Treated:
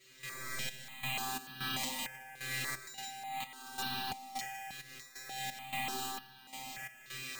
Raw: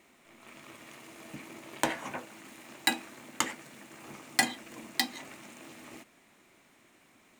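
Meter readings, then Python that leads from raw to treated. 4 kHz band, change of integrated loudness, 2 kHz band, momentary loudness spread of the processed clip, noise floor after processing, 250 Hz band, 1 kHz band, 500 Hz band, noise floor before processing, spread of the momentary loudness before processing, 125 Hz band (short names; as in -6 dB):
-3.0 dB, -6.5 dB, -4.0 dB, 10 LU, -57 dBFS, -8.5 dB, -1.5 dB, -9.5 dB, -63 dBFS, 19 LU, +3.5 dB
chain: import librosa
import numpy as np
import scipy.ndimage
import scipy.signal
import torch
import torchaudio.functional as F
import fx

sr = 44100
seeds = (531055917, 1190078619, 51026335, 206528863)

p1 = fx.bin_compress(x, sr, power=0.6)
p2 = scipy.signal.sosfilt(scipy.signal.butter(2, 7300.0, 'lowpass', fs=sr, output='sos'), p1)
p3 = fx.peak_eq(p2, sr, hz=90.0, db=2.5, octaves=1.4)
p4 = fx.comb_fb(p3, sr, f0_hz=130.0, decay_s=0.76, harmonics='all', damping=0.0, mix_pct=100)
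p5 = p4 + fx.echo_single(p4, sr, ms=155, db=-5.0, dry=0)
p6 = fx.rev_spring(p5, sr, rt60_s=1.2, pass_ms=(60,), chirp_ms=65, drr_db=-0.5)
p7 = fx.over_compress(p6, sr, threshold_db=-45.0, ratio=-1.0)
p8 = fx.peak_eq(p7, sr, hz=660.0, db=-12.5, octaves=2.7)
p9 = np.repeat(p8[::4], 4)[:len(p8)]
p10 = fx.step_gate(p9, sr, bpm=131, pattern='..xxxx...xxx', floor_db=-12.0, edge_ms=4.5)
p11 = p10 + 0.67 * np.pad(p10, (int(5.2 * sr / 1000.0), 0))[:len(p10)]
p12 = fx.phaser_held(p11, sr, hz=3.4, low_hz=220.0, high_hz=2100.0)
y = p12 * librosa.db_to_amplitude(15.0)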